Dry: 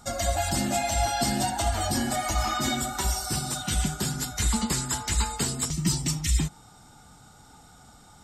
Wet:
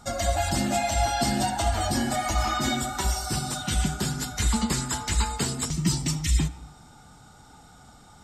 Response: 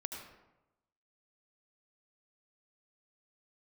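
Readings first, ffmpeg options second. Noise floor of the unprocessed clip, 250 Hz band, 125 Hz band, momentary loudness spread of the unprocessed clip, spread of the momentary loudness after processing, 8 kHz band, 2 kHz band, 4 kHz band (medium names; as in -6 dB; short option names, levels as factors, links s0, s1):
-53 dBFS, +1.5 dB, +1.5 dB, 3 LU, 3 LU, -1.5 dB, +1.5 dB, +0.5 dB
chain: -filter_complex "[0:a]highshelf=f=7900:g=-6.5,asplit=2[s0][s1];[1:a]atrim=start_sample=2205[s2];[s1][s2]afir=irnorm=-1:irlink=0,volume=0.266[s3];[s0][s3]amix=inputs=2:normalize=0"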